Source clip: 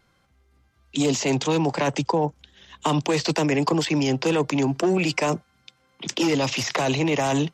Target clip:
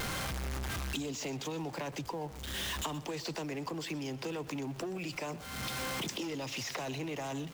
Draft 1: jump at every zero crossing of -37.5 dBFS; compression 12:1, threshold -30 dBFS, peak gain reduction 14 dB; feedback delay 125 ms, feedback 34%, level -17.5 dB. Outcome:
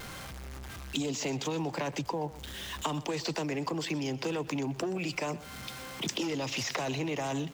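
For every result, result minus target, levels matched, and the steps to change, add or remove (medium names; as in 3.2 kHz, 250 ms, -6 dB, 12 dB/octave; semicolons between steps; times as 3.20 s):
compression: peak gain reduction -6 dB; jump at every zero crossing: distortion -8 dB
change: compression 12:1, threshold -36 dBFS, peak gain reduction 19.5 dB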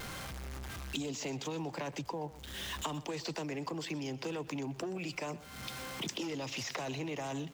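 jump at every zero crossing: distortion -8 dB
change: jump at every zero crossing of -28.5 dBFS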